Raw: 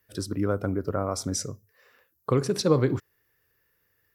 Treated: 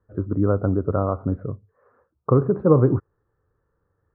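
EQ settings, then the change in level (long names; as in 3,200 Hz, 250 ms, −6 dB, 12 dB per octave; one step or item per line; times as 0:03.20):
elliptic low-pass filter 1,300 Hz, stop band 80 dB
low-shelf EQ 110 Hz +8 dB
+5.0 dB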